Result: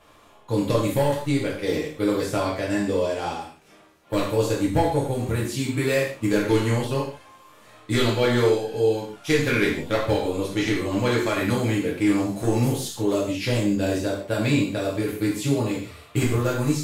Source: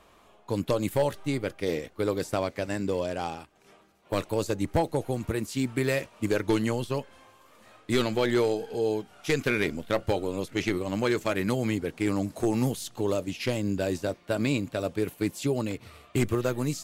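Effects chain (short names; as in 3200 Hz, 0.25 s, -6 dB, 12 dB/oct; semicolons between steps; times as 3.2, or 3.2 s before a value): non-linear reverb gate 0.19 s falling, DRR -5.5 dB; gain -1.5 dB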